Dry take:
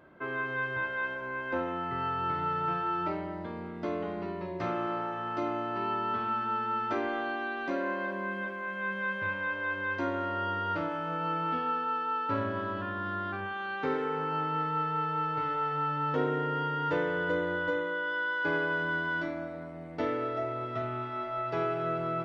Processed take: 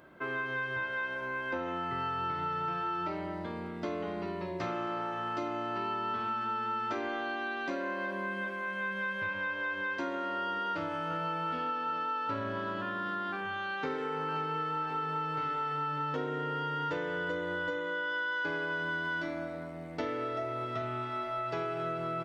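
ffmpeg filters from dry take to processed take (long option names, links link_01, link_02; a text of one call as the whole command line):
ffmpeg -i in.wav -filter_complex "[0:a]asplit=2[link_01][link_02];[link_02]afade=type=in:start_time=10.71:duration=0.01,afade=type=out:start_time=11.2:duration=0.01,aecho=0:1:390|780|1170|1560|1950|2340|2730|3120|3510|3900|4290|4680:0.266073|0.199554|0.149666|0.112249|0.084187|0.0631403|0.0473552|0.0355164|0.0266373|0.019978|0.0149835|0.0112376[link_03];[link_01][link_03]amix=inputs=2:normalize=0,asplit=2[link_04][link_05];[link_05]afade=type=in:start_time=13.75:duration=0.01,afade=type=out:start_time=14.49:duration=0.01,aecho=0:1:530|1060|1590|2120|2650|3180|3710:0.334965|0.200979|0.120588|0.0723525|0.0434115|0.0260469|0.0156281[link_06];[link_04][link_06]amix=inputs=2:normalize=0,highshelf=frequency=3700:gain=10.5,bandreject=frequency=48.83:width_type=h:width=4,bandreject=frequency=97.66:width_type=h:width=4,acompressor=threshold=-31dB:ratio=6" out.wav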